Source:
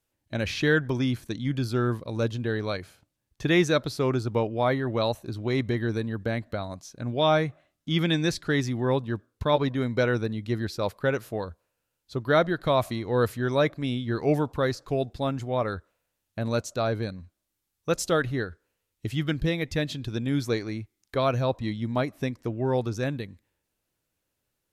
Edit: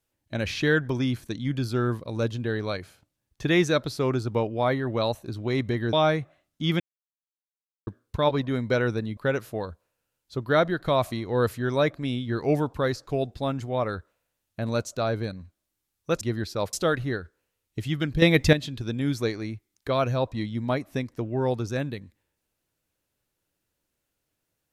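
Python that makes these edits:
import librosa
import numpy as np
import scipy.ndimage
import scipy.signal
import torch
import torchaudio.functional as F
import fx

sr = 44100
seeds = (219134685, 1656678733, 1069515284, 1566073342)

y = fx.edit(x, sr, fx.cut(start_s=5.93, length_s=1.27),
    fx.silence(start_s=8.07, length_s=1.07),
    fx.move(start_s=10.44, length_s=0.52, to_s=18.0),
    fx.clip_gain(start_s=19.49, length_s=0.31, db=10.0), tone=tone)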